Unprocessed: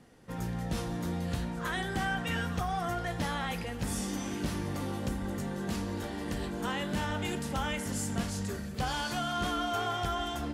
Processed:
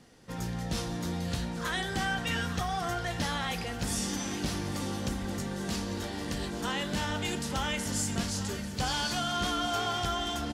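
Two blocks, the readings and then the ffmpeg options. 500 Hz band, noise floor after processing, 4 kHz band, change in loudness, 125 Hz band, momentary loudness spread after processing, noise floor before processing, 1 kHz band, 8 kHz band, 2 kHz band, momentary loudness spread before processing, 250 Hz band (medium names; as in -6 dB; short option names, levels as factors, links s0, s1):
+0.5 dB, -37 dBFS, +5.5 dB, +1.5 dB, 0.0 dB, 5 LU, -39 dBFS, +0.5 dB, +5.5 dB, +2.0 dB, 4 LU, +0.5 dB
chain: -af "equalizer=f=5100:w=0.76:g=7.5,aecho=1:1:846|1692|2538|3384|4230:0.2|0.106|0.056|0.0297|0.0157"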